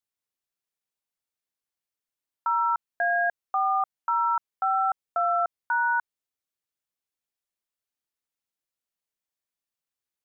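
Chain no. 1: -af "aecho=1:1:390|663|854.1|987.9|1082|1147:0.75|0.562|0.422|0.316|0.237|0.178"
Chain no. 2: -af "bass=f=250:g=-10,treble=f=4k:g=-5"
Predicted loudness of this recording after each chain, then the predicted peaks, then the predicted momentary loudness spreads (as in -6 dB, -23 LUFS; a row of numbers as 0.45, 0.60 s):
-24.0, -26.0 LUFS; -10.0, -17.5 dBFS; 6, 3 LU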